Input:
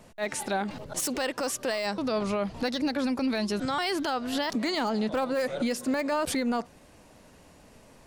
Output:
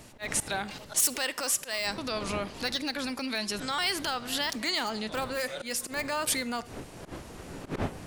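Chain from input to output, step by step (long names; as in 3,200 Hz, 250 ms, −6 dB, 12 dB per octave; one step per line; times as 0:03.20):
wind on the microphone 340 Hz −33 dBFS
dynamic equaliser 5,200 Hz, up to −4 dB, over −45 dBFS, Q 0.85
volume swells 104 ms
tilt shelving filter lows −9 dB, about 1,400 Hz
on a send: convolution reverb RT60 0.60 s, pre-delay 37 ms, DRR 18.5 dB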